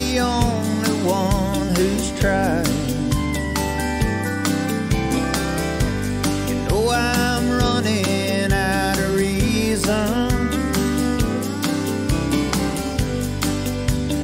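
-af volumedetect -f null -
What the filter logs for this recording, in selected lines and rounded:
mean_volume: -19.9 dB
max_volume: -6.2 dB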